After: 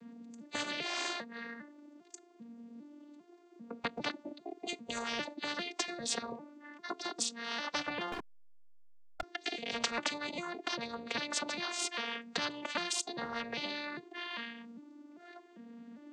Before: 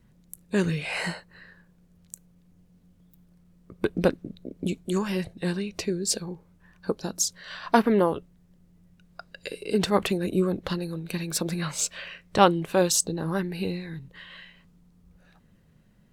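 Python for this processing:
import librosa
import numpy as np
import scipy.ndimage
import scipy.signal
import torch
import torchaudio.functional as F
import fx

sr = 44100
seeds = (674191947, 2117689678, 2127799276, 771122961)

y = fx.vocoder_arp(x, sr, chord='major triad', root=58, every_ms=399)
y = fx.backlash(y, sr, play_db=-36.0, at=(8.12, 9.23))
y = fx.spectral_comp(y, sr, ratio=10.0)
y = y * librosa.db_to_amplitude(-8.0)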